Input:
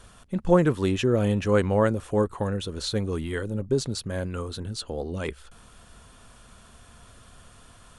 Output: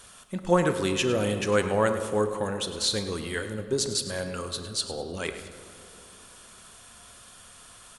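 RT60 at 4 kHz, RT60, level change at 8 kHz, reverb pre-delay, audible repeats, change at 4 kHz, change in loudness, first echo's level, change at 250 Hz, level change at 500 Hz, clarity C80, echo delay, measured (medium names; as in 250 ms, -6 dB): 1.4 s, 2.9 s, +7.5 dB, 5 ms, 2, +5.5 dB, -1.5 dB, -12.5 dB, -4.0 dB, -1.5 dB, 9.0 dB, 104 ms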